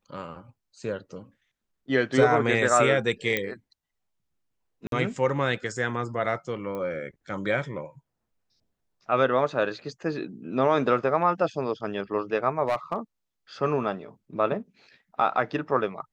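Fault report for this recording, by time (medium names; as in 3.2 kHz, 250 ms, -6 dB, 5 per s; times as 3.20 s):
3.37 s: pop -11 dBFS
4.87–4.92 s: dropout 52 ms
6.75 s: pop -23 dBFS
12.67–12.96 s: clipped -20 dBFS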